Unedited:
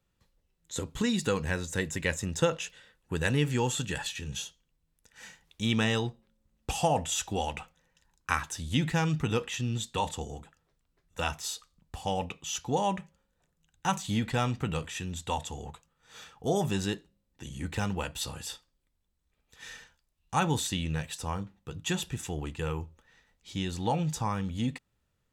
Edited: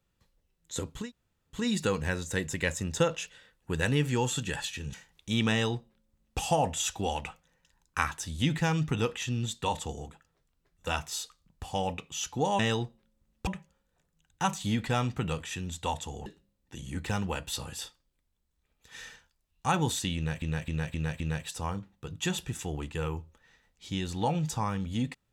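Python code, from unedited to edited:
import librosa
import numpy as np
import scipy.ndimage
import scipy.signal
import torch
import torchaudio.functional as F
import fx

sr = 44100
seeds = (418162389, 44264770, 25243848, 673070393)

y = fx.edit(x, sr, fx.insert_room_tone(at_s=1.0, length_s=0.58, crossfade_s=0.24),
    fx.cut(start_s=4.36, length_s=0.9),
    fx.duplicate(start_s=5.83, length_s=0.88, to_s=12.91),
    fx.cut(start_s=15.7, length_s=1.24),
    fx.repeat(start_s=20.84, length_s=0.26, count=5), tone=tone)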